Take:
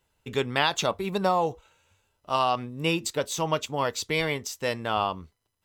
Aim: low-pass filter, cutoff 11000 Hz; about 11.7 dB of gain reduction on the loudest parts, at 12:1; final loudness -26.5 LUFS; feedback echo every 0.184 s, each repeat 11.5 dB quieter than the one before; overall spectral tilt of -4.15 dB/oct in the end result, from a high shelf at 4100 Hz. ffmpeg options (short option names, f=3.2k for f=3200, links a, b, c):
-af "lowpass=11k,highshelf=f=4.1k:g=-5,acompressor=threshold=-31dB:ratio=12,aecho=1:1:184|368|552:0.266|0.0718|0.0194,volume=10dB"